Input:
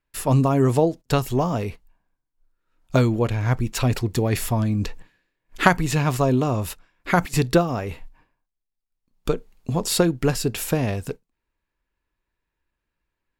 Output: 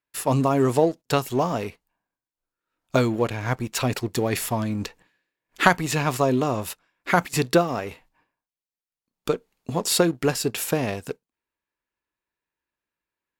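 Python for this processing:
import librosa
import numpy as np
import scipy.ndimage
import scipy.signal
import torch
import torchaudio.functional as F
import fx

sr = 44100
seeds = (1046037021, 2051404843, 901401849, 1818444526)

y = fx.highpass(x, sr, hz=270.0, slope=6)
y = fx.leveller(y, sr, passes=1)
y = F.gain(torch.from_numpy(y), -2.5).numpy()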